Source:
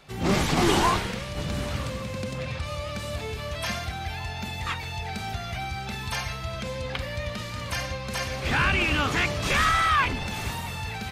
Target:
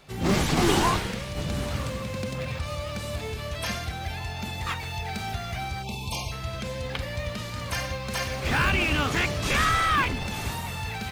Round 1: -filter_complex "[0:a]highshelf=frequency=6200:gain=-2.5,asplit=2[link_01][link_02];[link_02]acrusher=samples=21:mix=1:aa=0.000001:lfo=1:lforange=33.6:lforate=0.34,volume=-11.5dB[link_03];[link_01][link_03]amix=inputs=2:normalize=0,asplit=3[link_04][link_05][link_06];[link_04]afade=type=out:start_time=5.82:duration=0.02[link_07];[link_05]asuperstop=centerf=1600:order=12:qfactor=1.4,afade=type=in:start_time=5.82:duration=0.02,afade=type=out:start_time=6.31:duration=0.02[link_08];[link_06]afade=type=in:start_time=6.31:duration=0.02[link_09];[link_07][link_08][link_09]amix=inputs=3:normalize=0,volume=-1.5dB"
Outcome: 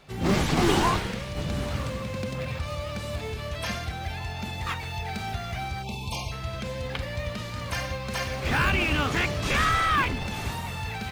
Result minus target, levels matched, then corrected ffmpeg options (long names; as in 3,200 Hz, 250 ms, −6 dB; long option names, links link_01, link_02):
8,000 Hz band −3.0 dB
-filter_complex "[0:a]highshelf=frequency=6200:gain=3.5,asplit=2[link_01][link_02];[link_02]acrusher=samples=21:mix=1:aa=0.000001:lfo=1:lforange=33.6:lforate=0.34,volume=-11.5dB[link_03];[link_01][link_03]amix=inputs=2:normalize=0,asplit=3[link_04][link_05][link_06];[link_04]afade=type=out:start_time=5.82:duration=0.02[link_07];[link_05]asuperstop=centerf=1600:order=12:qfactor=1.4,afade=type=in:start_time=5.82:duration=0.02,afade=type=out:start_time=6.31:duration=0.02[link_08];[link_06]afade=type=in:start_time=6.31:duration=0.02[link_09];[link_07][link_08][link_09]amix=inputs=3:normalize=0,volume=-1.5dB"